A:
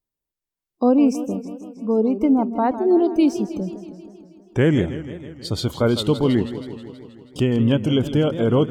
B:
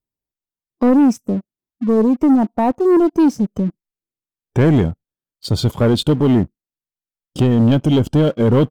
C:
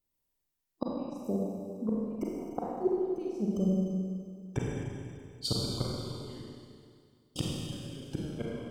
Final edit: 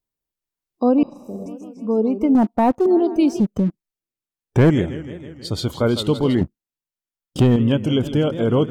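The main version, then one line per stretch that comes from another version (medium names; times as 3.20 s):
A
1.03–1.46 s: from C
2.35–2.86 s: from B
3.40–4.70 s: from B
6.41–7.56 s: from B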